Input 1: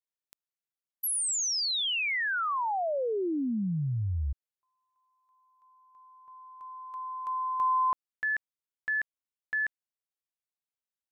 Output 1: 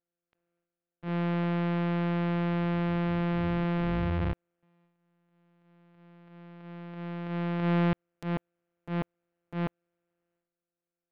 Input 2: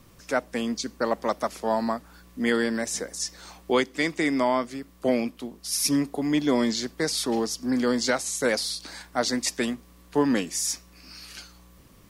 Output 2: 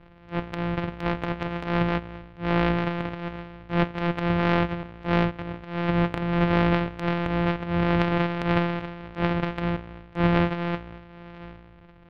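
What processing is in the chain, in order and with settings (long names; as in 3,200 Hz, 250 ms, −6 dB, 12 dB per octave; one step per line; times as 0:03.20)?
samples sorted by size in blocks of 256 samples
low-pass filter 2,900 Hz 24 dB per octave
transient designer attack −11 dB, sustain +11 dB
level +1.5 dB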